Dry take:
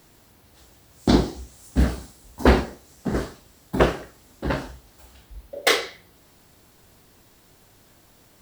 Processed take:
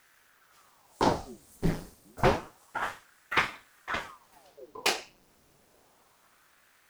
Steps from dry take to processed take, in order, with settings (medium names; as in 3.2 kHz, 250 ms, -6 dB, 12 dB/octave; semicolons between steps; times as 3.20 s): gliding tape speed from 104% -> 140%; ring modulator with a swept carrier 880 Hz, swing 90%, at 0.29 Hz; trim -5 dB